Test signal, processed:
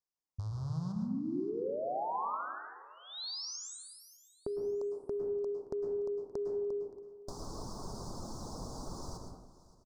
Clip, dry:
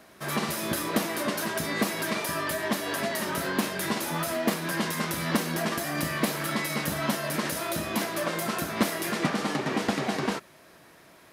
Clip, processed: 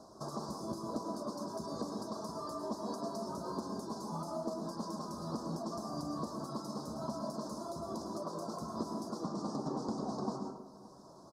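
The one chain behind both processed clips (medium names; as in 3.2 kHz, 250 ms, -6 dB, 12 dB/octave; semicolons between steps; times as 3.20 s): rattle on loud lows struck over -30 dBFS, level -21 dBFS; Chebyshev band-stop 1.1–4.9 kHz, order 3; reverb removal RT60 1 s; treble shelf 4.5 kHz +10 dB; de-hum 49.75 Hz, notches 10; compression 6:1, threshold -38 dBFS; distance through air 130 m; feedback delay 573 ms, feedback 29%, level -19 dB; plate-style reverb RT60 1 s, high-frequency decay 0.4×, pre-delay 95 ms, DRR 2 dB; trim +1.5 dB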